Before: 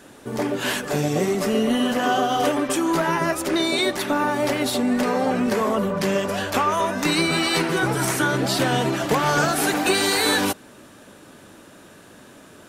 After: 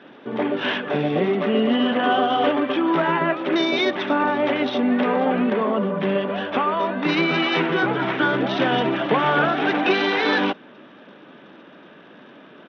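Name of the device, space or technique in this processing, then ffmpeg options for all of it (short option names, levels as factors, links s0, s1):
Bluetooth headset: -filter_complex "[0:a]asettb=1/sr,asplit=3[s0][s1][s2];[s0]atrim=end=5.504[s3];[s1]atrim=start=5.5:end=7.09,asetpts=PTS-STARTPTS,afade=t=in:d=0.004:c=qsin,afade=t=out:st=1.586:d=0.004:c=qsin,equalizer=f=2600:w=0.32:g=-3.5[s4];[s2]atrim=start=7.086[s5];[s3][s4]acrossfade=d=0.004:c1=hsin:c2=qsin[s6];[s6][s5]acrossfade=d=0.004:c1=qsin:c2=hsin,highpass=f=160:w=0.5412,highpass=f=160:w=1.3066,aresample=8000,aresample=44100,volume=1.19" -ar 32000 -c:a sbc -b:a 64k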